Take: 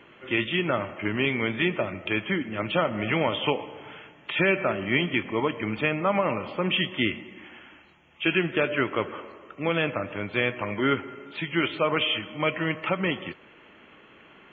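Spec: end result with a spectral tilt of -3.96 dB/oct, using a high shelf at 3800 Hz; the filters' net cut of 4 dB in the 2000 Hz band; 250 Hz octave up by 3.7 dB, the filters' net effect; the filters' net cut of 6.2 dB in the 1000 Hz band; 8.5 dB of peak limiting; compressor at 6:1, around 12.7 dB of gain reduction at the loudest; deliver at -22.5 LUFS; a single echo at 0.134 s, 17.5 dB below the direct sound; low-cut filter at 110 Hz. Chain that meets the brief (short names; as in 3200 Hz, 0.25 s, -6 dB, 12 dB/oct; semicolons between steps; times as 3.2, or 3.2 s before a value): HPF 110 Hz; bell 250 Hz +6 dB; bell 1000 Hz -7.5 dB; bell 2000 Hz -5 dB; high shelf 3800 Hz +5.5 dB; compressor 6:1, threshold -32 dBFS; limiter -27.5 dBFS; echo 0.134 s -17.5 dB; gain +15.5 dB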